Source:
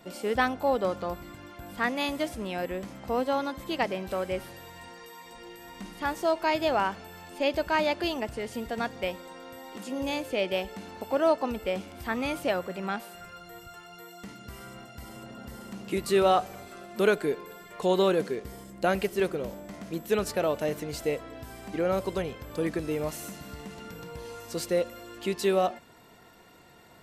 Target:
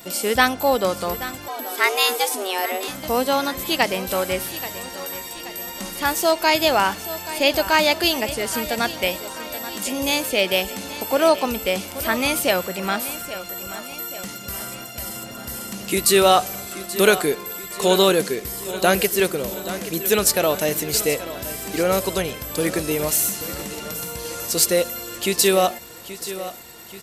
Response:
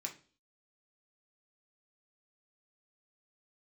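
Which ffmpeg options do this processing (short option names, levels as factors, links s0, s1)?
-filter_complex "[0:a]aecho=1:1:830|1660|2490|3320|4150:0.2|0.108|0.0582|0.0314|0.017,crystalizer=i=4.5:c=0,asettb=1/sr,asplit=3[s0][s1][s2];[s0]atrim=end=1.484[s3];[s1]atrim=start=1.48:end=2.88,asetpts=PTS-STARTPTS,afade=t=in:d=0.004:c=qsin,afade=t=out:st=1.396:d=0.004:c=qsin,afreqshift=190[s4];[s2]atrim=start=2.876[s5];[s3][s4]acrossfade=d=0.004:c1=hsin:c2=qsin[s6];[s6][s5]acrossfade=d=0.004:c1=qsin:c2=hsin,volume=2"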